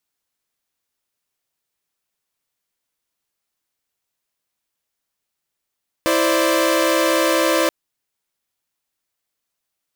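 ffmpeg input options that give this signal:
-f lavfi -i "aevalsrc='0.141*((2*mod(329.63*t,1)-1)+(2*mod(523.25*t,1)-1)+(2*mod(587.33*t,1)-1))':d=1.63:s=44100"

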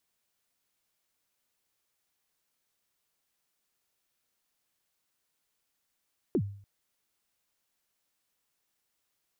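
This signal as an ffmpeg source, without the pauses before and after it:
-f lavfi -i "aevalsrc='0.0891*pow(10,-3*t/0.53)*sin(2*PI*(430*0.067/log(100/430)*(exp(log(100/430)*min(t,0.067)/0.067)-1)+100*max(t-0.067,0)))':d=0.29:s=44100"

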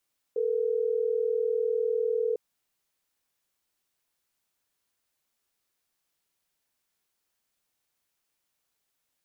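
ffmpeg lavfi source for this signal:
-f lavfi -i "aevalsrc='0.0447*(sin(2*PI*440*t)+sin(2*PI*480*t))*clip(min(mod(t,6),2-mod(t,6))/0.005,0,1)':d=3.12:s=44100"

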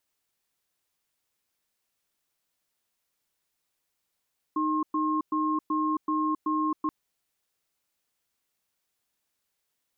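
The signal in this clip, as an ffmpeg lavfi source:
-f lavfi -i "aevalsrc='0.0473*(sin(2*PI*309*t)+sin(2*PI*1070*t))*clip(min(mod(t,0.38),0.27-mod(t,0.38))/0.005,0,1)':d=2.33:s=44100"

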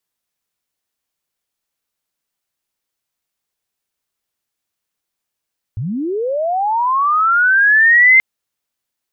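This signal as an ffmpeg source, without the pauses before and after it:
-f lavfi -i "aevalsrc='pow(10,(-19+14*t/2.43)/20)*sin(2*PI*(93*t+2007*t*t/(2*2.43)))':d=2.43:s=44100"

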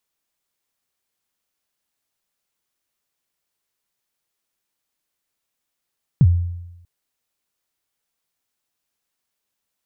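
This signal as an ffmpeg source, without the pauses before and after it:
-f lavfi -i "aevalsrc='0.473*pow(10,-3*t/0.95)*sin(2*PI*(170*0.049/log(87/170)*(exp(log(87/170)*min(t,0.049)/0.049)-1)+87*max(t-0.049,0)))':d=0.64:s=44100"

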